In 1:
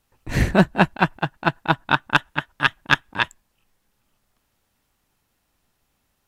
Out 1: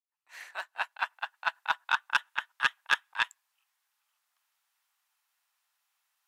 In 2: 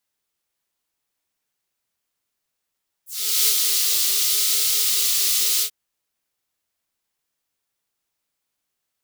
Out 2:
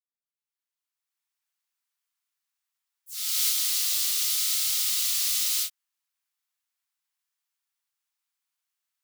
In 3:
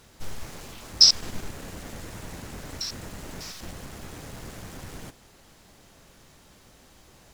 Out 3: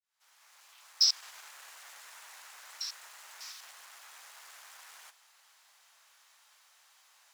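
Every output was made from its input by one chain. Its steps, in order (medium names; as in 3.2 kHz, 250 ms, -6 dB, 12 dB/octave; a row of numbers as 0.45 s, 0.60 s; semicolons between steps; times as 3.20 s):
fade-in on the opening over 1.54 s; high-pass 910 Hz 24 dB/octave; saturation -6.5 dBFS; trim -5.5 dB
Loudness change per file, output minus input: -10.0 LU, -6.0 LU, -11.0 LU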